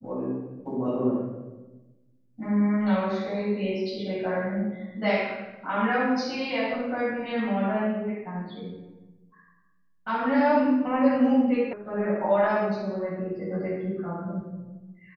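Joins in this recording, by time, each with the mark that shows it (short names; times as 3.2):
11.73 sound cut off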